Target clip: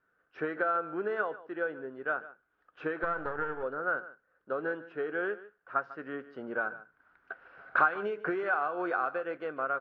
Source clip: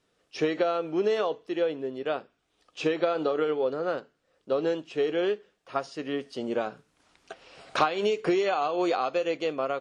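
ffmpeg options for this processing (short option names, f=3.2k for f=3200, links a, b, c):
-filter_complex "[0:a]asettb=1/sr,asplit=3[a][b][c];[a]atrim=end=3.034[d];[b]atrim=start=3.03:end=3.63,asetpts=PTS-STARTPTS,afade=t=in:d=0.004:c=qsin,afade=t=out:st=0.596:d=0.004:c=qsin,aeval=exprs='if(lt(val(0),0),0.251*val(0),val(0))':c=same[e];[c]atrim=start=3.626[f];[d][e]acrossfade=d=0.004:c1=hsin:c2=qsin[g];[g][f]acrossfade=d=0.004:c1=qsin:c2=hsin,lowpass=f=1.5k:t=q:w=9.5,aecho=1:1:147:0.141,volume=-9dB"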